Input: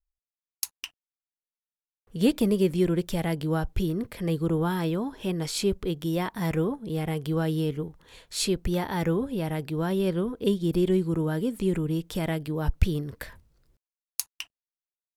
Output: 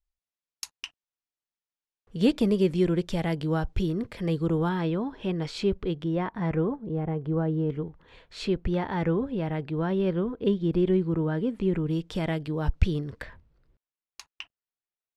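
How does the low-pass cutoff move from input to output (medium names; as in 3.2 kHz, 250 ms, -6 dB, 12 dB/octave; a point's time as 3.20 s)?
6.2 kHz
from 4.69 s 3.4 kHz
from 6.04 s 1.9 kHz
from 6.82 s 1.1 kHz
from 7.70 s 2.7 kHz
from 11.87 s 5.3 kHz
from 13.22 s 2.9 kHz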